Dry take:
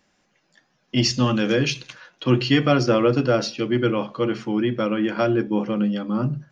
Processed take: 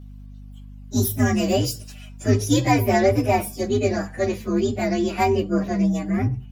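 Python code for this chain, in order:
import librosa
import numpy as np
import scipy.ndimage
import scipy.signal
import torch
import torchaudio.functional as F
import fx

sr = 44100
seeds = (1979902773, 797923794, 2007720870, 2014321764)

y = fx.partial_stretch(x, sr, pct=130)
y = fx.add_hum(y, sr, base_hz=50, snr_db=18)
y = F.gain(torch.from_numpy(y), 2.0).numpy()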